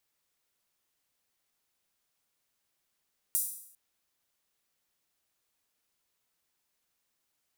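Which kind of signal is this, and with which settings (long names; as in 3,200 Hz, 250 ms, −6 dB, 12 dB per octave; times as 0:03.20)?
open synth hi-hat length 0.40 s, high-pass 9,200 Hz, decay 0.67 s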